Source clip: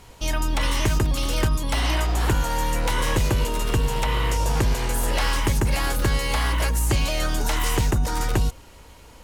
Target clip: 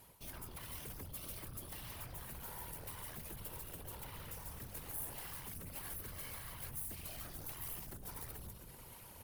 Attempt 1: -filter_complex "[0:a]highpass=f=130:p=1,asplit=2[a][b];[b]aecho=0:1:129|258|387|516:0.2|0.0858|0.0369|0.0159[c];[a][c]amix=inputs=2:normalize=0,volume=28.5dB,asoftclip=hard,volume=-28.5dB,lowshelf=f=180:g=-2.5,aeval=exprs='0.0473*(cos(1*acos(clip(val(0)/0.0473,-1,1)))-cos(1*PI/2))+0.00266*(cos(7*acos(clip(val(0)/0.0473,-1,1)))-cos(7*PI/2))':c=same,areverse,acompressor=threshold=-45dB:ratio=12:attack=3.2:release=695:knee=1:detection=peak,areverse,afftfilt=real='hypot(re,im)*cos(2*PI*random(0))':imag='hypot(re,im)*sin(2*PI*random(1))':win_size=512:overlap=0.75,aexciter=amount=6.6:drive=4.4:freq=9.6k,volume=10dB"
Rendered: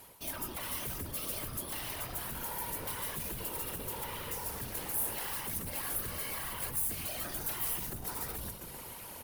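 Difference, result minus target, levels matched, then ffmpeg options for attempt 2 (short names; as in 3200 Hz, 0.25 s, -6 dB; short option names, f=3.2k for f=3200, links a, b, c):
compressor: peak gain reduction -8 dB; 125 Hz band -5.0 dB
-filter_complex "[0:a]asplit=2[a][b];[b]aecho=0:1:129|258|387|516:0.2|0.0858|0.0369|0.0159[c];[a][c]amix=inputs=2:normalize=0,volume=28.5dB,asoftclip=hard,volume=-28.5dB,lowshelf=f=180:g=-2.5,aeval=exprs='0.0473*(cos(1*acos(clip(val(0)/0.0473,-1,1)))-cos(1*PI/2))+0.00266*(cos(7*acos(clip(val(0)/0.0473,-1,1)))-cos(7*PI/2))':c=same,areverse,acompressor=threshold=-53.5dB:ratio=12:attack=3.2:release=695:knee=1:detection=peak,areverse,afftfilt=real='hypot(re,im)*cos(2*PI*random(0))':imag='hypot(re,im)*sin(2*PI*random(1))':win_size=512:overlap=0.75,aexciter=amount=6.6:drive=4.4:freq=9.6k,volume=10dB"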